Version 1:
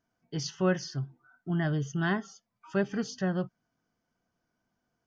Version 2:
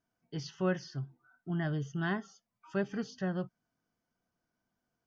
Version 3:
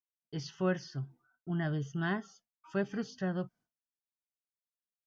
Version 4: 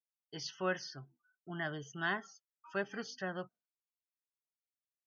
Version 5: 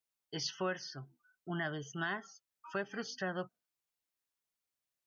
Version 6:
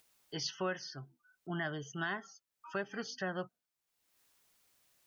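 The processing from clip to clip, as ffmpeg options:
ffmpeg -i in.wav -filter_complex "[0:a]acrossover=split=5000[link_01][link_02];[link_02]acompressor=threshold=-57dB:ratio=4:attack=1:release=60[link_03];[link_01][link_03]amix=inputs=2:normalize=0,volume=-4.5dB" out.wav
ffmpeg -i in.wav -af "agate=range=-33dB:threshold=-57dB:ratio=3:detection=peak" out.wav
ffmpeg -i in.wav -af "afftdn=noise_reduction=19:noise_floor=-58,highpass=frequency=1000:poles=1,volume=4dB" out.wav
ffmpeg -i in.wav -af "alimiter=level_in=6.5dB:limit=-24dB:level=0:latency=1:release=471,volume=-6.5dB,volume=5dB" out.wav
ffmpeg -i in.wav -af "acompressor=mode=upward:threshold=-55dB:ratio=2.5" out.wav

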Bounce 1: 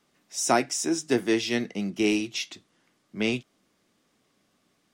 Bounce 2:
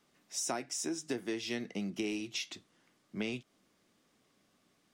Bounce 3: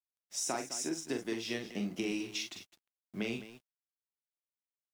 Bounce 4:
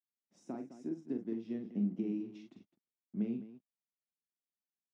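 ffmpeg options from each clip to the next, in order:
ffmpeg -i in.wav -af "acompressor=threshold=-31dB:ratio=6,volume=-2.5dB" out.wav
ffmpeg -i in.wav -af "aecho=1:1:43.73|209.9:0.501|0.251,acrusher=bits=10:mix=0:aa=0.000001,aeval=exprs='sgn(val(0))*max(abs(val(0))-0.00158,0)':channel_layout=same" out.wav
ffmpeg -i in.wav -af "bandpass=frequency=220:width_type=q:width=2.4:csg=0,volume=4.5dB" out.wav

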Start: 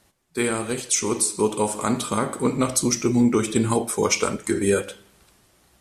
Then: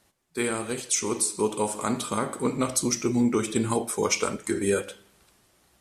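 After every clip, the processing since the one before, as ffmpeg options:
ffmpeg -i in.wav -af "lowshelf=frequency=160:gain=-3.5,volume=-3.5dB" out.wav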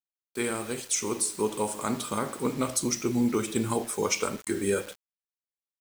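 ffmpeg -i in.wav -af "acrusher=bits=6:mix=0:aa=0.000001,volume=-2.5dB" out.wav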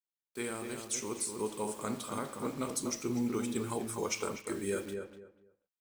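ffmpeg -i in.wav -filter_complex "[0:a]asplit=2[link_01][link_02];[link_02]adelay=245,lowpass=frequency=1600:poles=1,volume=-5dB,asplit=2[link_03][link_04];[link_04]adelay=245,lowpass=frequency=1600:poles=1,volume=0.24,asplit=2[link_05][link_06];[link_06]adelay=245,lowpass=frequency=1600:poles=1,volume=0.24[link_07];[link_01][link_03][link_05][link_07]amix=inputs=4:normalize=0,volume=-8dB" out.wav

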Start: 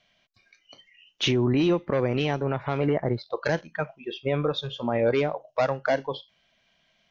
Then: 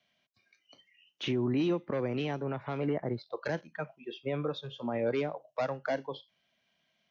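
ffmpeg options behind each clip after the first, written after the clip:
ffmpeg -i in.wav -filter_complex "[0:a]highpass=89,equalizer=frequency=260:width=1.5:gain=3,acrossover=split=190|590|3100[link_01][link_02][link_03][link_04];[link_04]alimiter=level_in=5dB:limit=-24dB:level=0:latency=1:release=245,volume=-5dB[link_05];[link_01][link_02][link_03][link_05]amix=inputs=4:normalize=0,volume=-8.5dB" out.wav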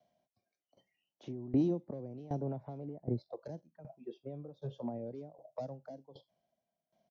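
ffmpeg -i in.wav -filter_complex "[0:a]firequalizer=gain_entry='entry(400,0);entry(690,7);entry(1200,-12);entry(2600,-20);entry(5300,-8)':delay=0.05:min_phase=1,acrossover=split=340|3000[link_01][link_02][link_03];[link_02]acompressor=threshold=-42dB:ratio=6[link_04];[link_01][link_04][link_03]amix=inputs=3:normalize=0,aeval=exprs='val(0)*pow(10,-19*if(lt(mod(1.3*n/s,1),2*abs(1.3)/1000),1-mod(1.3*n/s,1)/(2*abs(1.3)/1000),(mod(1.3*n/s,1)-2*abs(1.3)/1000)/(1-2*abs(1.3)/1000))/20)':channel_layout=same,volume=4dB" out.wav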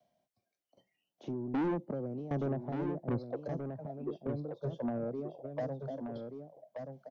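ffmpeg -i in.wav -filter_complex "[0:a]acrossover=split=120|880|1700[link_01][link_02][link_03][link_04];[link_02]dynaudnorm=framelen=390:gausssize=5:maxgain=8dB[link_05];[link_01][link_05][link_03][link_04]amix=inputs=4:normalize=0,asoftclip=type=tanh:threshold=-29dB,aecho=1:1:1179:0.473" out.wav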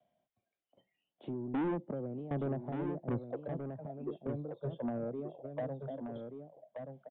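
ffmpeg -i in.wav -af "aresample=8000,aresample=44100,volume=-1.5dB" out.wav

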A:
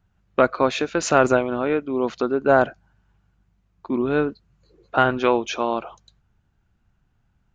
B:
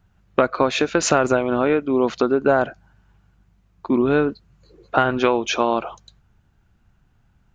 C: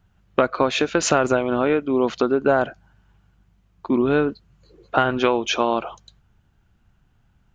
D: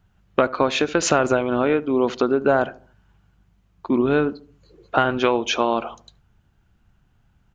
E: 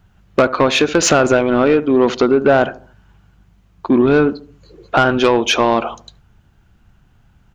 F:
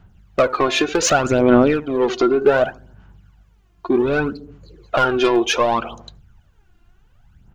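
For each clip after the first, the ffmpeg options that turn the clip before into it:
ffmpeg -i in.wav -af "acompressor=threshold=-19dB:ratio=6,volume=6dB" out.wav
ffmpeg -i in.wav -af "equalizer=frequency=3100:width_type=o:width=0.28:gain=3.5,volume=-1dB" out.wav
ffmpeg -i in.wav -filter_complex "[0:a]asplit=2[link_01][link_02];[link_02]adelay=73,lowpass=frequency=830:poles=1,volume=-16.5dB,asplit=2[link_03][link_04];[link_04]adelay=73,lowpass=frequency=830:poles=1,volume=0.43,asplit=2[link_05][link_06];[link_06]adelay=73,lowpass=frequency=830:poles=1,volume=0.43,asplit=2[link_07][link_08];[link_08]adelay=73,lowpass=frequency=830:poles=1,volume=0.43[link_09];[link_01][link_03][link_05][link_07][link_09]amix=inputs=5:normalize=0" out.wav
ffmpeg -i in.wav -af "asoftclip=type=tanh:threshold=-12.5dB,volume=8.5dB" out.wav
ffmpeg -i in.wav -af "aphaser=in_gain=1:out_gain=1:delay=2.9:decay=0.65:speed=0.66:type=sinusoidal,volume=-5.5dB" out.wav

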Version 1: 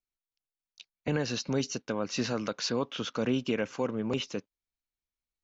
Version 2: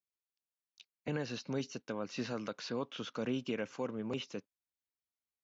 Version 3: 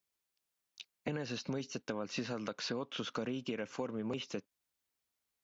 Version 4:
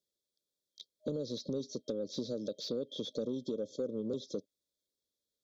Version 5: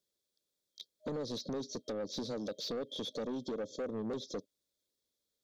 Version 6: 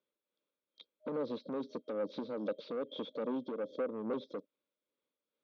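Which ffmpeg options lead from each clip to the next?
ffmpeg -i in.wav -filter_complex "[0:a]acrossover=split=4200[link_01][link_02];[link_02]acompressor=threshold=-45dB:ratio=4:attack=1:release=60[link_03];[link_01][link_03]amix=inputs=2:normalize=0,highpass=86,volume=-7dB" out.wav
ffmpeg -i in.wav -af "acompressor=threshold=-43dB:ratio=6,volume=8dB" out.wav
ffmpeg -i in.wav -filter_complex "[0:a]afftfilt=real='re*(1-between(b*sr/4096,620,3200))':imag='im*(1-between(b*sr/4096,620,3200))':win_size=4096:overlap=0.75,asplit=2[link_01][link_02];[link_02]highpass=frequency=720:poles=1,volume=12dB,asoftclip=type=tanh:threshold=-24.5dB[link_03];[link_01][link_03]amix=inputs=2:normalize=0,lowpass=frequency=1700:poles=1,volume=-6dB,volume=2dB" out.wav
ffmpeg -i in.wav -af "asoftclip=type=tanh:threshold=-36dB,volume=3dB" out.wav
ffmpeg -i in.wav -af "tremolo=f=2.4:d=0.44,highpass=290,equalizer=frequency=390:width_type=q:width=4:gain=-6,equalizer=frequency=720:width_type=q:width=4:gain=-8,equalizer=frequency=1800:width_type=q:width=4:gain=-10,lowpass=frequency=2500:width=0.5412,lowpass=frequency=2500:width=1.3066,volume=7.5dB" out.wav

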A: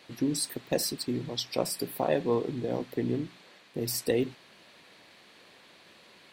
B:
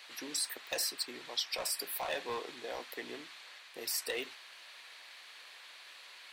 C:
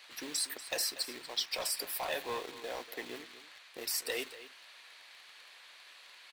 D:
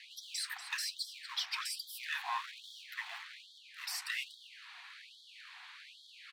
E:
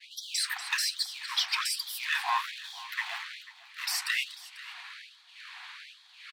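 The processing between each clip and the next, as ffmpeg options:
ffmpeg -i in.wav -filter_complex "[0:a]highpass=1100,acrossover=split=2700[link_01][link_02];[link_01]asoftclip=type=hard:threshold=-38dB[link_03];[link_02]alimiter=level_in=5dB:limit=-24dB:level=0:latency=1:release=289,volume=-5dB[link_04];[link_03][link_04]amix=inputs=2:normalize=0,volume=4.5dB" out.wav
ffmpeg -i in.wav -filter_complex "[0:a]asplit=2[link_01][link_02];[link_02]acrusher=bits=6:mix=0:aa=0.000001,volume=-7dB[link_03];[link_01][link_03]amix=inputs=2:normalize=0,aecho=1:1:239:0.178,volume=-2.5dB" out.wav
ffmpeg -i in.wav -af "asoftclip=type=tanh:threshold=-29.5dB,aemphasis=mode=reproduction:type=75kf,afftfilt=real='re*gte(b*sr/1024,680*pow(3200/680,0.5+0.5*sin(2*PI*1.2*pts/sr)))':imag='im*gte(b*sr/1024,680*pow(3200/680,0.5+0.5*sin(2*PI*1.2*pts/sr)))':win_size=1024:overlap=0.75,volume=7dB" out.wav
ffmpeg -i in.wav -af "agate=range=-33dB:threshold=-50dB:ratio=3:detection=peak,aecho=1:1:492:0.126,volume=8.5dB" out.wav

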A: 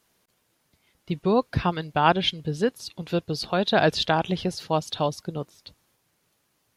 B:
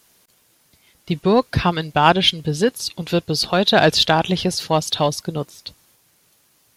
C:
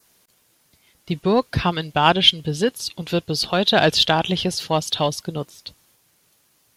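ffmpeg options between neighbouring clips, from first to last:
ffmpeg -i in.wav -filter_complex "[0:a]highshelf=frequency=3300:gain=7.5,asplit=2[link_01][link_02];[link_02]asoftclip=type=tanh:threshold=-20.5dB,volume=-6.5dB[link_03];[link_01][link_03]amix=inputs=2:normalize=0,volume=3.5dB" out.wav
ffmpeg -i in.wav -af "adynamicequalizer=threshold=0.0178:dfrequency=3100:dqfactor=3.9:tfrequency=3100:tqfactor=3.9:attack=5:release=100:ratio=0.375:range=3:mode=boostabove:tftype=bell,volume=-2.5dB" out.wav

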